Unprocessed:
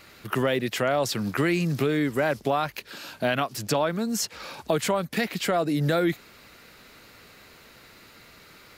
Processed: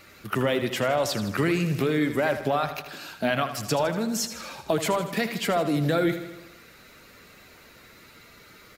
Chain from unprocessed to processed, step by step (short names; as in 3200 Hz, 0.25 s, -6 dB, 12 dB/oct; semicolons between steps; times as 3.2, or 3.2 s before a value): bin magnitudes rounded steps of 15 dB; feedback echo 79 ms, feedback 59%, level -11 dB